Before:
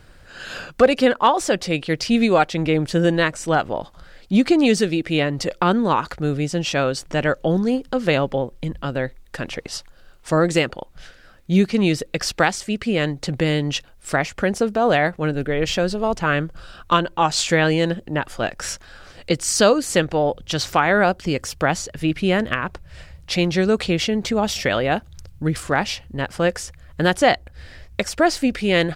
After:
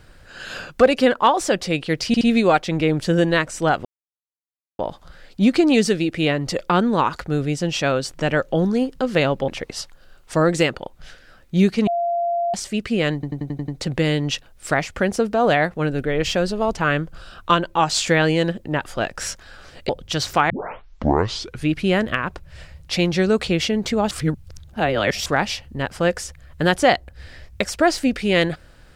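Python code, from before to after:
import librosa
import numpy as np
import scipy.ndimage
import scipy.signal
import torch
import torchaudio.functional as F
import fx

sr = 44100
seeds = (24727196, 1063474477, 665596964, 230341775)

y = fx.edit(x, sr, fx.stutter(start_s=2.07, slice_s=0.07, count=3),
    fx.insert_silence(at_s=3.71, length_s=0.94),
    fx.cut(start_s=8.4, length_s=1.04),
    fx.bleep(start_s=11.83, length_s=0.67, hz=689.0, db=-18.5),
    fx.stutter(start_s=13.1, slice_s=0.09, count=7),
    fx.cut(start_s=19.31, length_s=0.97),
    fx.tape_start(start_s=20.89, length_s=1.22),
    fx.reverse_span(start_s=24.5, length_s=1.15), tone=tone)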